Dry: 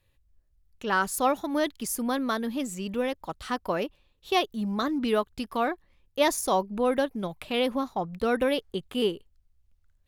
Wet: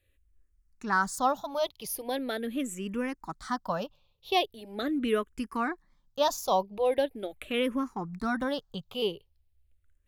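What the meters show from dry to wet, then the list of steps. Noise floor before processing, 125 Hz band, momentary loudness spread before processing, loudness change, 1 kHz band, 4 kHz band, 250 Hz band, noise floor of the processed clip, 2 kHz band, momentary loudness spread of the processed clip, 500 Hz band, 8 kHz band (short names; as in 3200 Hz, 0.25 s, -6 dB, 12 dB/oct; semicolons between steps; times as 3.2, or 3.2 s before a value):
-68 dBFS, -3.5 dB, 8 LU, -2.5 dB, -1.5 dB, -2.0 dB, -4.0 dB, -71 dBFS, -2.5 dB, 8 LU, -3.0 dB, -5.0 dB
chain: endless phaser -0.41 Hz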